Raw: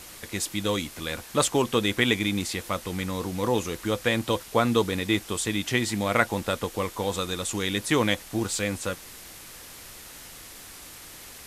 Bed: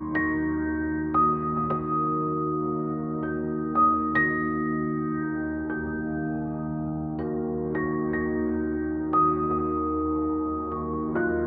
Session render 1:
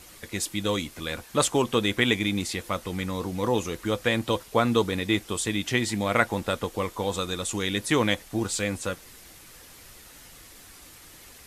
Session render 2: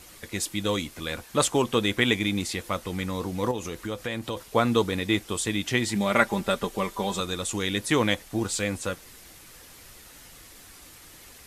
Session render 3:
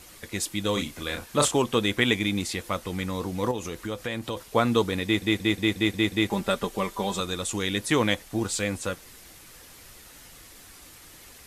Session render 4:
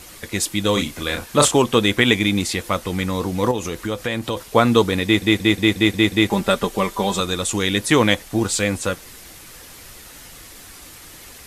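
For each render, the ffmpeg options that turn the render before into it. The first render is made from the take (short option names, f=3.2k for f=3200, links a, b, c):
-af "afftdn=nr=6:nf=-45"
-filter_complex "[0:a]asettb=1/sr,asplit=3[a][b][c];[a]atrim=end=3.514[d];[b]atrim=start=3.51:end=4.37,asetpts=PTS-STARTPTS,afade=t=in:d=0.004:c=qsin,afade=t=out:st=0.856:d=0.004:c=qsin,acompressor=threshold=-30dB:ratio=2.5:attack=3.2:release=140:knee=1:detection=peak[e];[c]atrim=start=4.366[f];[d][e]acrossfade=d=0.004:c1=hsin:c2=qsin[g];[g][f]acrossfade=d=0.004:c1=qsin:c2=hsin,asettb=1/sr,asplit=3[h][i][j];[h]atrim=end=5.954[k];[i]atrim=start=5.95:end=7.2,asetpts=PTS-STARTPTS,afade=t=in:d=0.004:c=qsin,afade=t=out:st=1.246:d=0.004:c=qsin,aecho=1:1:5.1:0.65,atrim=end_sample=55125[l];[j]atrim=start=7.196[m];[k][l]acrossfade=d=0.004:c1=hsin:c2=qsin[n];[n][m]acrossfade=d=0.004:c1=qsin:c2=hsin"
-filter_complex "[0:a]asettb=1/sr,asplit=3[a][b][c];[a]atrim=end=0.734[d];[b]atrim=start=0.73:end=1.55,asetpts=PTS-STARTPTS,afade=t=in:d=0.004:c=qsin,afade=t=out:st=0.816:d=0.004:c=qsin,asplit=2[e][f];[f]adelay=35,volume=-5.5dB[g];[e][g]amix=inputs=2:normalize=0,atrim=end_sample=36162[h];[c]atrim=start=1.546[i];[d][h]acrossfade=d=0.004:c1=hsin:c2=qsin[j];[j][i]acrossfade=d=0.004:c1=qsin:c2=hsin,asplit=8[k][l][m][n][o][p][q][r];[k]atrim=end=5.222[s];[l]atrim=start=5.038:end=5.222[t];[m]atrim=start=5.038:end=5.222[u];[n]atrim=start=5.038:end=5.222[v];[o]atrim=start=5.038:end=5.222[w];[p]atrim=start=5.038:end=5.222[x];[q]atrim=start=5.038:end=5.222[y];[r]atrim=start=6.298[z];[s][t]acrossfade=d=0.004:c1=hsin:c2=hsin[aa];[aa][u]acrossfade=d=0.004:c1=hsin:c2=hsin[ab];[ab][v]acrossfade=d=0.004:c1=hsin:c2=hsin[ac];[ac][w]acrossfade=d=0.004:c1=hsin:c2=hsin[ad];[ad][x]acrossfade=d=0.004:c1=hsin:c2=hsin[ae];[ae][y]acrossfade=d=0.004:c1=hsin:c2=hsin[af];[af][z]acrossfade=d=0.004:c1=hsin:c2=hsin"
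-af "volume=7.5dB,alimiter=limit=-1dB:level=0:latency=1"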